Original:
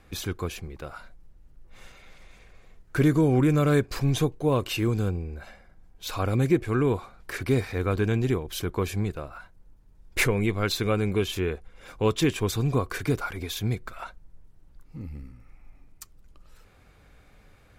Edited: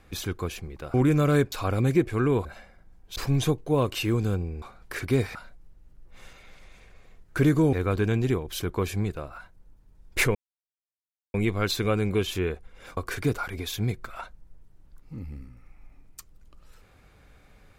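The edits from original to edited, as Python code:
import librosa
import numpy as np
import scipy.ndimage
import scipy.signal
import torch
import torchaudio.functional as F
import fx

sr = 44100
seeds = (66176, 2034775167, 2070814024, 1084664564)

y = fx.edit(x, sr, fx.move(start_s=0.94, length_s=2.38, to_s=7.73),
    fx.swap(start_s=3.9, length_s=1.46, other_s=6.07, other_length_s=0.93),
    fx.insert_silence(at_s=10.35, length_s=0.99),
    fx.cut(start_s=11.98, length_s=0.82), tone=tone)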